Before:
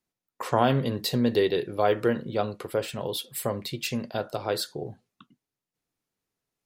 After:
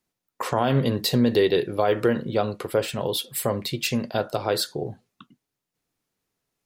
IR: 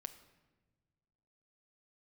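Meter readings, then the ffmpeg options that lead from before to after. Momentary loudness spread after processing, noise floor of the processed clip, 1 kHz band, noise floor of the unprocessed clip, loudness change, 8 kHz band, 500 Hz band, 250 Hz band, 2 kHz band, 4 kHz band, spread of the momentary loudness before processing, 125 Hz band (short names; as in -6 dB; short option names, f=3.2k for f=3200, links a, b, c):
7 LU, -85 dBFS, +1.0 dB, under -85 dBFS, +3.0 dB, +5.0 dB, +3.0 dB, +3.5 dB, +3.0 dB, +4.5 dB, 9 LU, +4.0 dB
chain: -af "alimiter=limit=-15.5dB:level=0:latency=1:release=74,volume=5dB"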